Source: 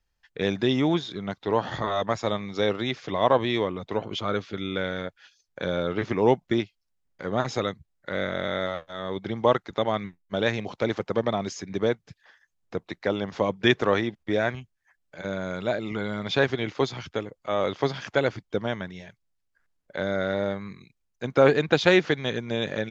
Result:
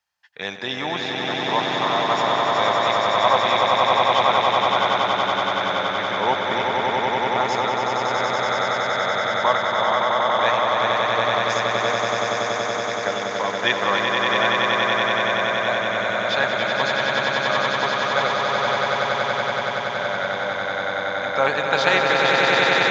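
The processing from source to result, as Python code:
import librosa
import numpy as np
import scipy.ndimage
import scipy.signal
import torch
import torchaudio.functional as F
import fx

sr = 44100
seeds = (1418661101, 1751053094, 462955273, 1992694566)

p1 = scipy.signal.sosfilt(scipy.signal.butter(2, 120.0, 'highpass', fs=sr, output='sos'), x)
p2 = fx.low_shelf_res(p1, sr, hz=560.0, db=-11.5, q=1.5)
p3 = p2 + fx.echo_swell(p2, sr, ms=94, loudest=8, wet_db=-4.0, dry=0)
y = p3 * librosa.db_to_amplitude(2.5)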